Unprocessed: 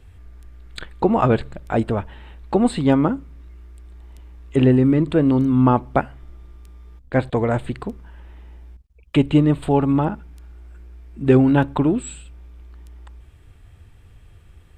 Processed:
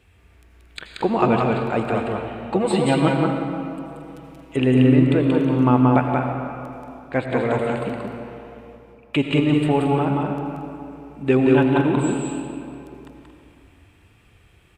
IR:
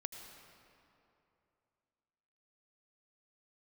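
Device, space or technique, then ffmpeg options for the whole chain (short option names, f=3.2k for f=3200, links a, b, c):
stadium PA: -filter_complex "[0:a]asettb=1/sr,asplit=3[a][b][c];[a]atrim=end=2.554[d];[b]atrim=start=2.55:end=4.57,asetpts=PTS-STARTPTS,afade=t=in:d=0.004:c=qsin,afade=t=out:st=2.016:d=0.004:c=qsin,aecho=1:1:6.1:0.86,atrim=end_sample=89082[e];[c]atrim=start=4.566[f];[d][e]acrossfade=d=0.004:c1=hsin:c2=qsin[g];[g][f]acrossfade=d=0.004:c1=qsin:c2=hsin,highpass=f=190:p=1,equalizer=f=2.5k:t=o:w=0.47:g=7,aecho=1:1:180.8|227.4:0.708|0.282[h];[1:a]atrim=start_sample=2205[i];[h][i]afir=irnorm=-1:irlink=0,volume=1dB"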